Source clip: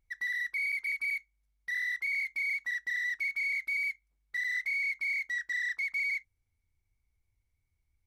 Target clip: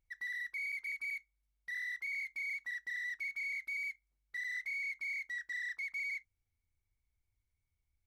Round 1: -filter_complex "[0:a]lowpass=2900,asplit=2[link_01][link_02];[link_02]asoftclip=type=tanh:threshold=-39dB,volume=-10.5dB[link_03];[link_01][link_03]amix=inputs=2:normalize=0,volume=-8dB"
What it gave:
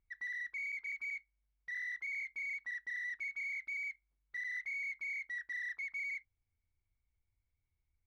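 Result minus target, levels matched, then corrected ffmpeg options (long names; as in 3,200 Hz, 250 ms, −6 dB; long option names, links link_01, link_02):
4,000 Hz band −6.0 dB
-filter_complex "[0:a]asplit=2[link_01][link_02];[link_02]asoftclip=type=tanh:threshold=-39dB,volume=-10.5dB[link_03];[link_01][link_03]amix=inputs=2:normalize=0,volume=-8dB"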